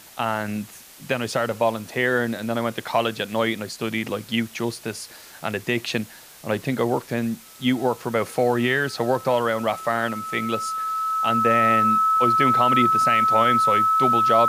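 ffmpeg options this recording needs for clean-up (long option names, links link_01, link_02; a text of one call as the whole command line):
ffmpeg -i in.wav -af "adeclick=threshold=4,bandreject=frequency=1300:width=30,afwtdn=0.0056" out.wav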